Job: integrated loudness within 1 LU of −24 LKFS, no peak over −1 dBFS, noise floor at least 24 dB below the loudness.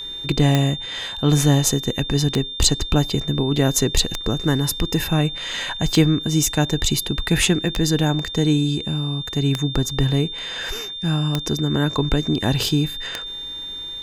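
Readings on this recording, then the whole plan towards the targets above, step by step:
number of clicks 8; interfering tone 3,600 Hz; level of the tone −29 dBFS; integrated loudness −20.5 LKFS; sample peak −1.5 dBFS; target loudness −24.0 LKFS
→ click removal
notch filter 3,600 Hz, Q 30
level −3.5 dB

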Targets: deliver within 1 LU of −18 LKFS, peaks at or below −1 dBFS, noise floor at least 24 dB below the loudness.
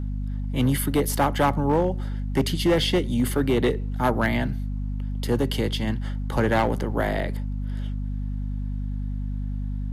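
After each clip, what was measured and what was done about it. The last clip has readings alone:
share of clipped samples 1.2%; peaks flattened at −14.5 dBFS; mains hum 50 Hz; hum harmonics up to 250 Hz; level of the hum −26 dBFS; integrated loudness −25.5 LKFS; sample peak −14.5 dBFS; target loudness −18.0 LKFS
→ clipped peaks rebuilt −14.5 dBFS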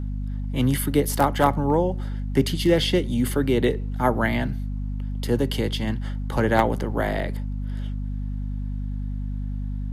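share of clipped samples 0.0%; mains hum 50 Hz; hum harmonics up to 250 Hz; level of the hum −26 dBFS
→ hum removal 50 Hz, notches 5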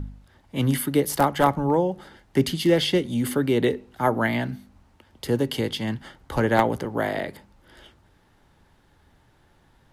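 mains hum none found; integrated loudness −24.0 LKFS; sample peak −5.0 dBFS; target loudness −18.0 LKFS
→ level +6 dB
brickwall limiter −1 dBFS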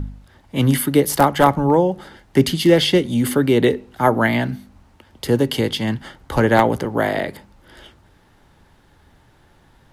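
integrated loudness −18.0 LKFS; sample peak −1.0 dBFS; background noise floor −54 dBFS

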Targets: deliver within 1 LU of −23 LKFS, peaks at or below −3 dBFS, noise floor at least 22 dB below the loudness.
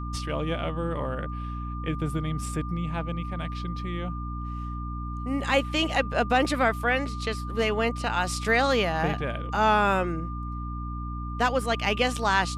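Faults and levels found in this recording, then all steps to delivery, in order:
mains hum 60 Hz; hum harmonics up to 300 Hz; level of the hum −31 dBFS; interfering tone 1,200 Hz; level of the tone −38 dBFS; integrated loudness −27.5 LKFS; sample peak −10.0 dBFS; target loudness −23.0 LKFS
→ hum removal 60 Hz, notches 5
notch filter 1,200 Hz, Q 30
level +4.5 dB

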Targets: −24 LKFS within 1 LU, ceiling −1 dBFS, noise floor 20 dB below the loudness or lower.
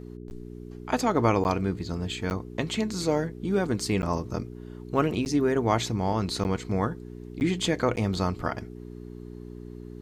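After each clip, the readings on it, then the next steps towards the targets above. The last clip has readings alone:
number of dropouts 8; longest dropout 9.9 ms; mains hum 60 Hz; hum harmonics up to 420 Hz; level of the hum −38 dBFS; integrated loudness −27.5 LKFS; sample peak −9.0 dBFS; target loudness −24.0 LKFS
→ repair the gap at 0:00.30/0:01.44/0:02.30/0:04.02/0:05.25/0:06.44/0:07.40/0:07.96, 9.9 ms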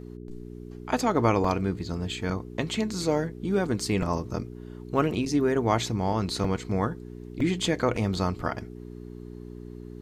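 number of dropouts 0; mains hum 60 Hz; hum harmonics up to 420 Hz; level of the hum −38 dBFS
→ hum removal 60 Hz, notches 7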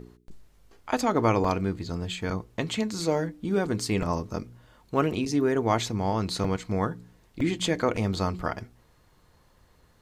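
mains hum none found; integrated loudness −28.0 LKFS; sample peak −9.0 dBFS; target loudness −24.0 LKFS
→ level +4 dB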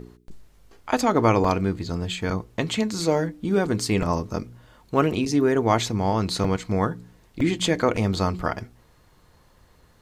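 integrated loudness −24.0 LKFS; sample peak −5.0 dBFS; background noise floor −57 dBFS

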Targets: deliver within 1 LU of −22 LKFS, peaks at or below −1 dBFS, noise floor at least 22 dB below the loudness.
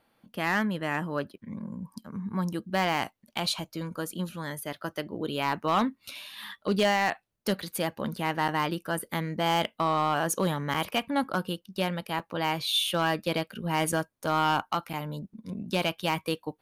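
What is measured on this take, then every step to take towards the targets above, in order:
share of clipped samples 0.6%; peaks flattened at −18.0 dBFS; number of dropouts 5; longest dropout 5.0 ms; integrated loudness −29.5 LKFS; sample peak −18.0 dBFS; target loudness −22.0 LKFS
→ clipped peaks rebuilt −18 dBFS
repair the gap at 0:08.48/0:08.99/0:10.74/0:12.19/0:14.93, 5 ms
level +7.5 dB

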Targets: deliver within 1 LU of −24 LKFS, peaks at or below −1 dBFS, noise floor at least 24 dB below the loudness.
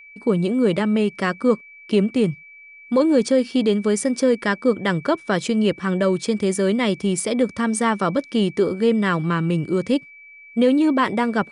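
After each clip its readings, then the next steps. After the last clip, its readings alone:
interfering tone 2,300 Hz; level of the tone −42 dBFS; integrated loudness −20.5 LKFS; sample peak −7.0 dBFS; target loudness −24.0 LKFS
→ notch filter 2,300 Hz, Q 30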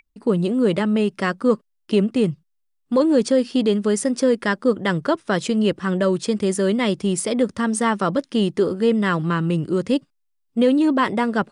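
interfering tone none found; integrated loudness −20.5 LKFS; sample peak −7.0 dBFS; target loudness −24.0 LKFS
→ level −3.5 dB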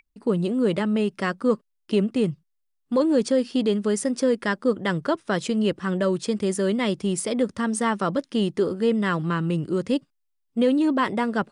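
integrated loudness −24.0 LKFS; sample peak −10.5 dBFS; background noise floor −74 dBFS

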